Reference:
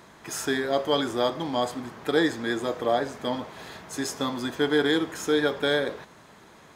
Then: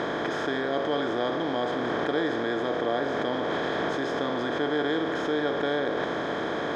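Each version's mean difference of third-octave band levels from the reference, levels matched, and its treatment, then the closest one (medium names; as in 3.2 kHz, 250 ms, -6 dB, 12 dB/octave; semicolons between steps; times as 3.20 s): 8.5 dB: spectral levelling over time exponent 0.4; in parallel at -1.5 dB: compressor with a negative ratio -27 dBFS, ratio -0.5; on the sum: distance through air 230 m; trim -7.5 dB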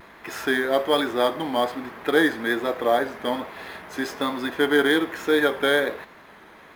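4.0 dB: ten-band graphic EQ 125 Hz -10 dB, 2 kHz +5 dB, 8 kHz -11 dB; in parallel at -6 dB: sample-rate reducer 13 kHz, jitter 0%; on the sum: vibrato 1.2 Hz 46 cents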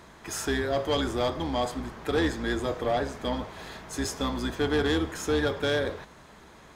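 2.0 dB: octave divider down 2 oct, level -3 dB; treble shelf 12 kHz -3.5 dB; saturation -19 dBFS, distortion -13 dB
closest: third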